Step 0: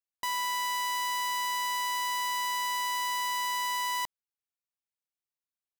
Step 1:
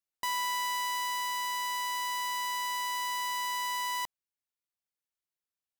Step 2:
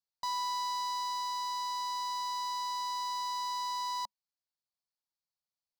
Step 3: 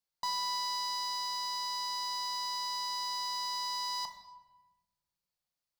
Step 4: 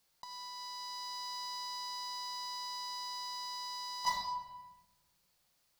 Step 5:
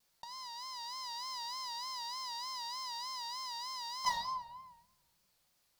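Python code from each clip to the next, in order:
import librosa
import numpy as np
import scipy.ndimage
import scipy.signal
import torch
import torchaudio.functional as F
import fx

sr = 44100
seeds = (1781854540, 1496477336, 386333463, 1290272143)

y1 = fx.rider(x, sr, range_db=10, speed_s=2.0)
y1 = F.gain(torch.from_numpy(y1), -2.0).numpy()
y2 = fx.curve_eq(y1, sr, hz=(210.0, 350.0, 550.0, 970.0, 1900.0, 2700.0, 4400.0, 9300.0), db=(0, -26, -2, 3, -10, -13, 8, -11))
y2 = F.gain(torch.from_numpy(y2), -3.5).numpy()
y3 = fx.room_shoebox(y2, sr, seeds[0], volume_m3=680.0, walls='mixed', distance_m=0.88)
y3 = F.gain(torch.from_numpy(y3), 2.0).numpy()
y4 = fx.over_compress(y3, sr, threshold_db=-43.0, ratio=-0.5)
y4 = F.gain(torch.from_numpy(y4), 5.0).numpy()
y5 = fx.vibrato(y4, sr, rate_hz=3.3, depth_cents=99.0)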